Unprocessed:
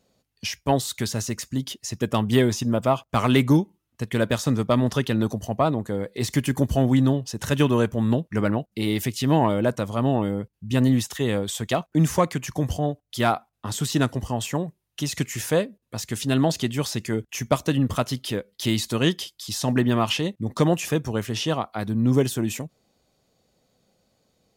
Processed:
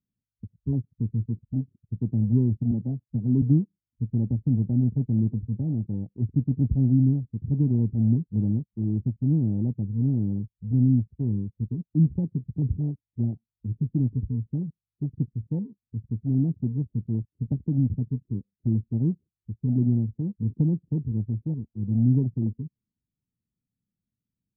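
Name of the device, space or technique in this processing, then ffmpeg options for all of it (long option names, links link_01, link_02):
the neighbour's flat through the wall: -filter_complex "[0:a]asettb=1/sr,asplit=3[link_01][link_02][link_03];[link_01]atrim=end=2.714[link_04];[link_02]atrim=start=2.71:end=3.42,asetpts=PTS-STARTPTS,afade=type=in:duration=0.004:curve=qsin,afade=type=out:start_time=0.706:duration=0.004:curve=qsin,highpass=frequency=120:width=0.5412,highpass=frequency=120:width=1.3066[link_05];[link_03]atrim=start=3.416[link_06];[link_04][link_05]acrossfade=duration=0.004:curve1=hsin:curve2=qsin[link_07];[link_07][link_06]acrossfade=duration=0.004:curve1=qsin:curve2=hsin,lowpass=frequency=260:width=0.5412,lowpass=frequency=260:width=1.3066,equalizer=frequency=110:width_type=o:width=0.45:gain=4,afwtdn=0.0224"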